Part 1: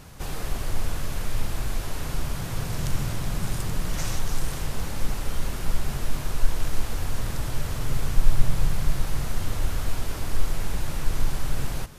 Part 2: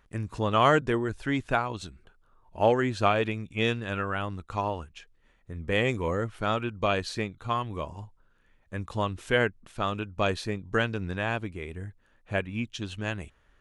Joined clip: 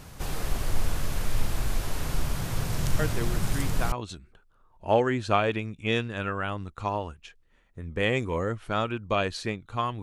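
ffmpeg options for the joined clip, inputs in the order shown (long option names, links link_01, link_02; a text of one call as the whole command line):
ffmpeg -i cue0.wav -i cue1.wav -filter_complex "[1:a]asplit=2[link_01][link_02];[0:a]apad=whole_dur=10.02,atrim=end=10.02,atrim=end=3.922[link_03];[link_02]atrim=start=1.638:end=7.74[link_04];[link_01]atrim=start=0.71:end=1.64,asetpts=PTS-STARTPTS,volume=-7.5dB,afade=type=in:duration=0.004:curve=hsin,afade=type=out:start_time=0.926:duration=0.004:curve=hsin,adelay=2990[link_05];[link_03][link_04]acrossfade=duration=0.004:curve1=hsin:curve2=hsin[link_06];[link_06][link_05]amix=inputs=2:normalize=0" out.wav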